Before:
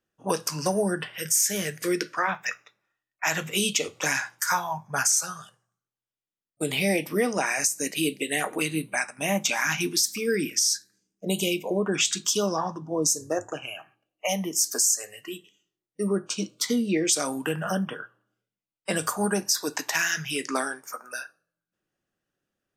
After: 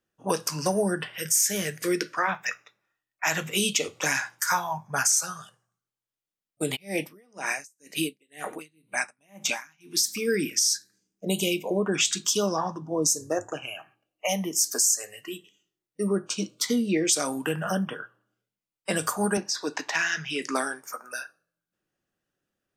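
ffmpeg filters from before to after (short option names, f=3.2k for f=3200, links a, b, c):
-filter_complex "[0:a]asplit=3[a][b][c];[a]afade=t=out:st=6.75:d=0.02[d];[b]aeval=exprs='val(0)*pow(10,-37*(0.5-0.5*cos(2*PI*2*n/s))/20)':c=same,afade=t=in:st=6.75:d=0.02,afade=t=out:st=10.04:d=0.02[e];[c]afade=t=in:st=10.04:d=0.02[f];[d][e][f]amix=inputs=3:normalize=0,asettb=1/sr,asplit=3[g][h][i];[g]atrim=end=19.374[j];[h]atrim=start=19.37:end=20.42,asetpts=PTS-STARTPTS,afade=t=in:d=0.004:c=qsin,afade=t=out:st=1.046:d=0.004:c=qsin,highpass=160,lowpass=4.8k[k];[i]atrim=start=20.416[l];[j][k]acrossfade=d=0.004:c1=hsin:c2=qsin[m];[m][l]acrossfade=d=0.004:c1=qsin:c2=hsin"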